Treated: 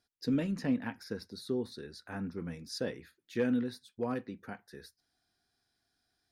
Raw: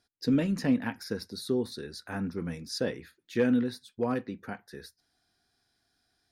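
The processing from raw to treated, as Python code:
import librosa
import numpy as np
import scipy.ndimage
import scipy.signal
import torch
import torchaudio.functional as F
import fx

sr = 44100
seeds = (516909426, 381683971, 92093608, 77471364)

y = fx.high_shelf(x, sr, hz=6300.0, db=-6.0, at=(0.51, 2.59))
y = y * librosa.db_to_amplitude(-5.0)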